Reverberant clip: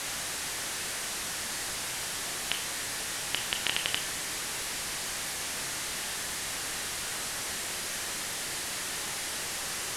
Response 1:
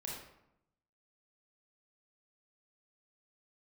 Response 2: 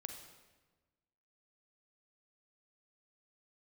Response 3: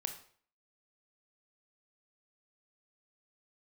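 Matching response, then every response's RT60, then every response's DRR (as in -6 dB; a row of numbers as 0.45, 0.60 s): 3; 0.80, 1.3, 0.50 s; -3.5, 4.5, 6.0 dB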